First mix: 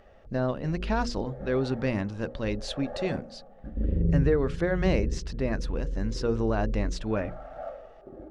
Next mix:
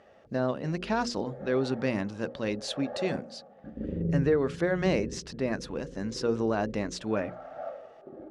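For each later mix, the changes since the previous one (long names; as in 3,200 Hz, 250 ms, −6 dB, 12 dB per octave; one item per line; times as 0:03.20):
speech: remove low-pass filter 4,600 Hz 12 dB per octave
master: add band-pass filter 150–5,600 Hz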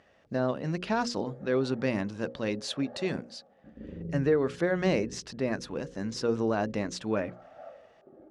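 background −8.5 dB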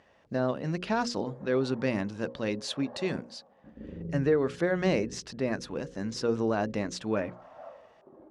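background: remove Butterworth band-reject 1,000 Hz, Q 3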